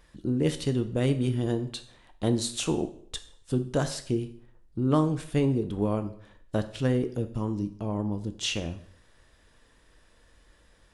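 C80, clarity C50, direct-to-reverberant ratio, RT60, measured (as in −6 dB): 17.0 dB, 13.5 dB, 9.0 dB, 0.60 s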